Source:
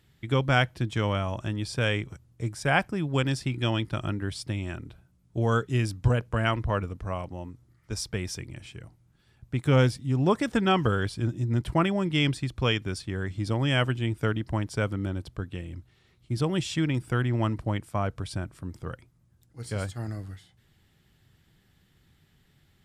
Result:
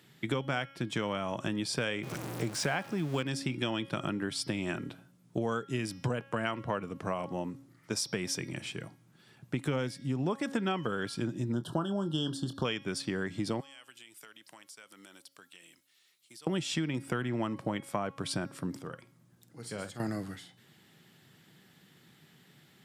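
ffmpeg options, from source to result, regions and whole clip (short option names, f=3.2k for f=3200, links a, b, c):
-filter_complex "[0:a]asettb=1/sr,asplit=3[a][b][c];[a]atrim=end=2.034[d];[b]atrim=start=2.03:end=3.23,asetpts=PTS-STARTPTS,afade=t=in:d=0.004:c=qsin,afade=t=out:st=1.196:d=0.004:c=qsin,aeval=exprs='val(0)+0.5*0.0188*sgn(val(0))':c=same,acrossover=split=7700[e][f];[f]acompressor=threshold=-48dB:ratio=4:attack=1:release=60[g];[e][g]amix=inputs=2:normalize=0[h];[c]atrim=start=3.226[i];[d][h]acrossfade=d=0.004:c1=hsin:c2=qsin[j];[j][i]acrossfade=d=0.004:c1=qsin:c2=hsin,asettb=1/sr,asplit=3[k][l][m];[k]atrim=end=11.524[n];[l]atrim=start=11.52:end=12.65,asetpts=PTS-STARTPTS,afade=t=in:d=0.004:c=qsin,afade=t=out:st=1.126:d=0.004:c=qsin,asuperstop=centerf=2200:order=12:qfactor=1.8,asplit=2[o][p];[p]adelay=25,volume=-11.5dB[q];[o][q]amix=inputs=2:normalize=0,atrim=end_sample=49833[r];[m]atrim=start=12.646[s];[n][r]acrossfade=d=0.004:c1=hsin:c2=qsin[t];[t][s]acrossfade=d=0.004:c1=qsin:c2=hsin,asettb=1/sr,asplit=3[u][v][w];[u]atrim=end=13.604[x];[v]atrim=start=13.6:end=16.47,asetpts=PTS-STARTPTS,afade=t=in:d=0.004:c=qsin,afade=t=out:st=2.866:d=0.004:c=qsin,aderivative,acompressor=threshold=-54dB:ratio=8:attack=3.2:release=140:knee=1:detection=peak[y];[w]atrim=start=16.466[z];[x][y]acrossfade=d=0.004:c1=hsin:c2=qsin[aa];[aa][z]acrossfade=d=0.004:c1=qsin:c2=hsin,asettb=1/sr,asplit=3[ab][ac][ad];[ab]atrim=end=18.794[ae];[ac]atrim=start=18.79:end=20,asetpts=PTS-STARTPTS,afade=t=in:d=0.004:c=qsin,afade=t=out:st=1.206:d=0.004:c=qsin,acompressor=threshold=-59dB:ratio=1.5:attack=3.2:release=140:knee=1:detection=peak,asplit=2[af][ag];[ag]adelay=50,volume=-13.5dB[ah];[af][ah]amix=inputs=2:normalize=0,atrim=end_sample=53361[ai];[ad]atrim=start=19.996[aj];[ae][ai]acrossfade=d=0.004:c1=hsin:c2=qsin[ak];[ak][aj]acrossfade=d=0.004:c1=qsin:c2=hsin,highpass=f=150:w=0.5412,highpass=f=150:w=1.3066,bandreject=f=274.7:t=h:w=4,bandreject=f=549.4:t=h:w=4,bandreject=f=824.1:t=h:w=4,bandreject=f=1.0988k:t=h:w=4,bandreject=f=1.3735k:t=h:w=4,bandreject=f=1.6482k:t=h:w=4,bandreject=f=1.9229k:t=h:w=4,bandreject=f=2.1976k:t=h:w=4,bandreject=f=2.4723k:t=h:w=4,bandreject=f=2.747k:t=h:w=4,bandreject=f=3.0217k:t=h:w=4,bandreject=f=3.2964k:t=h:w=4,bandreject=f=3.5711k:t=h:w=4,bandreject=f=3.8458k:t=h:w=4,bandreject=f=4.1205k:t=h:w=4,bandreject=f=4.3952k:t=h:w=4,bandreject=f=4.6699k:t=h:w=4,bandreject=f=4.9446k:t=h:w=4,bandreject=f=5.2193k:t=h:w=4,bandreject=f=5.494k:t=h:w=4,bandreject=f=5.7687k:t=h:w=4,acompressor=threshold=-36dB:ratio=6,volume=6.5dB"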